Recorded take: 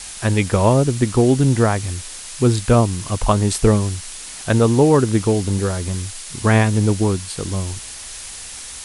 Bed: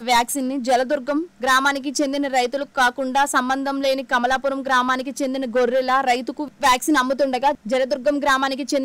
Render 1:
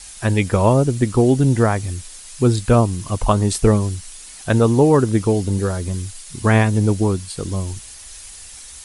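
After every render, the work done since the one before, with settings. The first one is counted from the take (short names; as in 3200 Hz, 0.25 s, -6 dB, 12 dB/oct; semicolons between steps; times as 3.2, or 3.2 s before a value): denoiser 8 dB, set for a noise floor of -34 dBFS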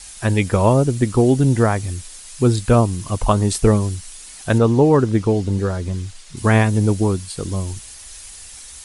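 4.58–6.37 air absorption 70 m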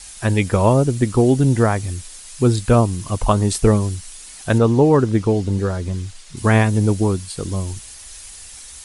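nothing audible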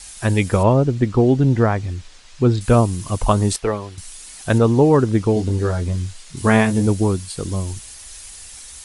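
0.63–2.61 air absorption 140 m; 3.56–3.98 three-band isolator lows -14 dB, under 440 Hz, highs -19 dB, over 4400 Hz; 5.34–6.87 doubler 23 ms -6 dB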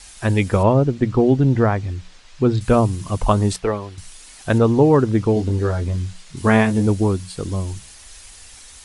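high shelf 6800 Hz -9 dB; notches 60/120/180 Hz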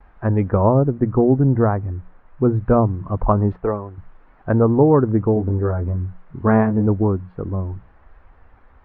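gate with hold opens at -36 dBFS; LPF 1400 Hz 24 dB/oct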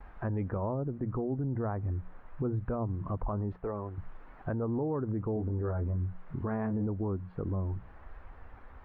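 compressor 2:1, threshold -34 dBFS, peak gain reduction 13.5 dB; limiter -25 dBFS, peak gain reduction 10 dB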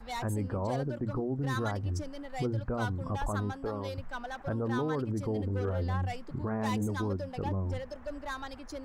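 add bed -21 dB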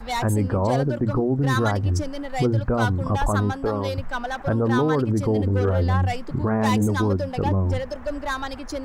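gain +11 dB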